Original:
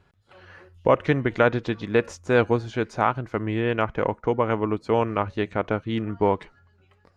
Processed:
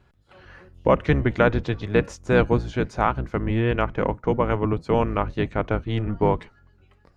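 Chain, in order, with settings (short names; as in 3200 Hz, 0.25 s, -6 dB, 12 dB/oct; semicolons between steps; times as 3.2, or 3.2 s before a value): octaver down 1 oct, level +1 dB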